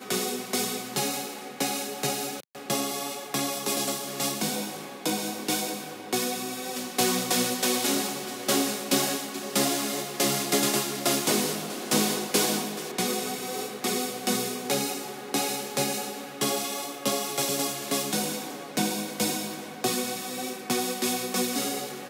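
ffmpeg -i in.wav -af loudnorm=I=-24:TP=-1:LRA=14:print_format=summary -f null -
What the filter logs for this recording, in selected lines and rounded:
Input Integrated:    -27.6 LUFS
Input True Peak:      -8.6 dBTP
Input LRA:             3.8 LU
Input Threshold:     -37.7 LUFS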